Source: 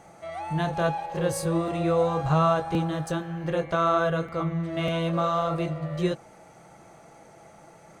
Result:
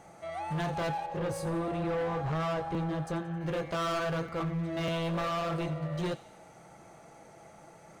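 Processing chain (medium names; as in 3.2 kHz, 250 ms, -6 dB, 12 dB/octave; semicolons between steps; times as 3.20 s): hard clipper -26.5 dBFS, distortion -7 dB; 1.06–3.41 s: treble shelf 3.2 kHz -9.5 dB; feedback echo behind a high-pass 89 ms, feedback 52%, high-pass 2.2 kHz, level -15.5 dB; trim -2.5 dB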